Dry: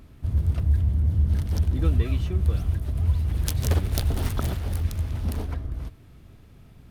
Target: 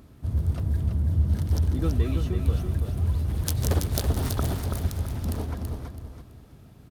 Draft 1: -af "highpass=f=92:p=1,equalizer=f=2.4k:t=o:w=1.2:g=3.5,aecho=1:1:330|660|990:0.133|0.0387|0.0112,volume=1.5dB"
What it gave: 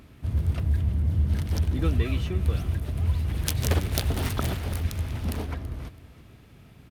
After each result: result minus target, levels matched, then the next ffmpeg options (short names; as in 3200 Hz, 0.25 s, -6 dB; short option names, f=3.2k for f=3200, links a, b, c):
echo-to-direct -11.5 dB; 2000 Hz band +6.0 dB
-af "highpass=f=92:p=1,equalizer=f=2.4k:t=o:w=1.2:g=3.5,aecho=1:1:330|660|990|1320:0.501|0.145|0.0421|0.0122,volume=1.5dB"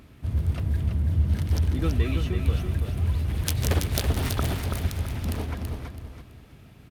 2000 Hz band +6.5 dB
-af "highpass=f=92:p=1,equalizer=f=2.4k:t=o:w=1.2:g=-5.5,aecho=1:1:330|660|990|1320:0.501|0.145|0.0421|0.0122,volume=1.5dB"